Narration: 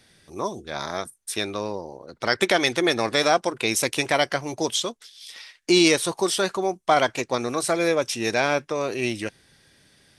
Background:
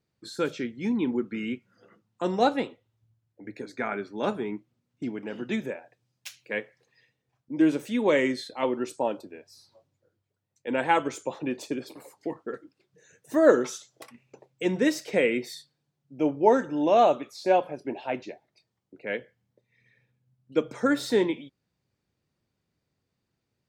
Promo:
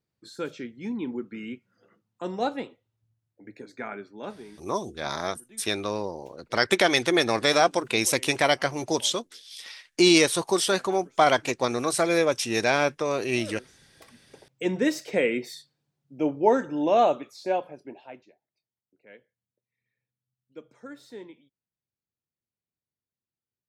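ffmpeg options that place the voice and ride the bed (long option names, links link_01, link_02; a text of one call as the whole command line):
ffmpeg -i stem1.wav -i stem2.wav -filter_complex "[0:a]adelay=4300,volume=-0.5dB[link_01];[1:a]volume=18dB,afade=type=out:start_time=3.87:duration=0.86:silence=0.11885,afade=type=in:start_time=13.78:duration=0.54:silence=0.0707946,afade=type=out:start_time=16.99:duration=1.28:silence=0.11885[link_02];[link_01][link_02]amix=inputs=2:normalize=0" out.wav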